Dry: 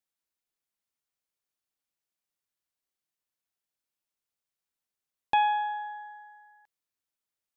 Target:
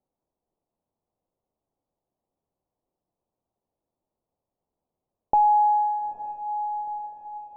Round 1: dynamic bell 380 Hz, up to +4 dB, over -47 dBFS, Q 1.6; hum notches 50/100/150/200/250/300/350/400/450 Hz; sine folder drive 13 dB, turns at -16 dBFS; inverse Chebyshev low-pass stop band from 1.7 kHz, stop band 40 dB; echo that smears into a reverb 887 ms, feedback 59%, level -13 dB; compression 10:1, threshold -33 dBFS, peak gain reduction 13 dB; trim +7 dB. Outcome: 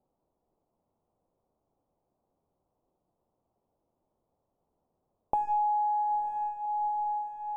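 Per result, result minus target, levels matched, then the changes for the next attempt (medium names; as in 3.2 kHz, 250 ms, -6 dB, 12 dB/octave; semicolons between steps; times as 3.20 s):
sine folder: distortion +24 dB; compression: peak gain reduction +8.5 dB
change: sine folder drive 6 dB, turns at -16 dBFS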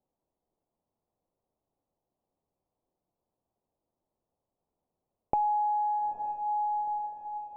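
compression: peak gain reduction +9 dB
change: compression 10:1, threshold -23 dBFS, peak gain reduction 4 dB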